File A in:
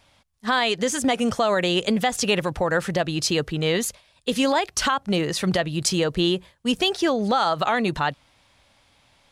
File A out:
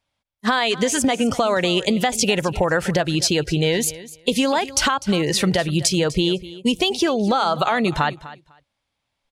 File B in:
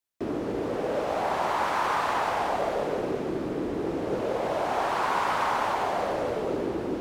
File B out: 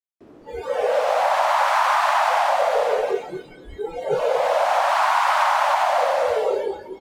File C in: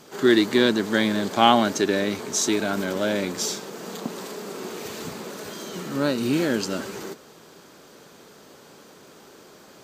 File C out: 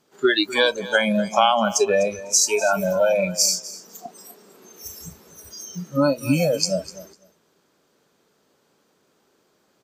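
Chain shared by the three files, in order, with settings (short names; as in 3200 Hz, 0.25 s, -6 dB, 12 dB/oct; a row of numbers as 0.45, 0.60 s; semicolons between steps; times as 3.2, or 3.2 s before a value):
spectral noise reduction 27 dB; compressor 6:1, threshold -25 dBFS; feedback echo 0.25 s, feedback 16%, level -17 dB; match loudness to -20 LUFS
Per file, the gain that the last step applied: +9.0, +10.5, +11.0 dB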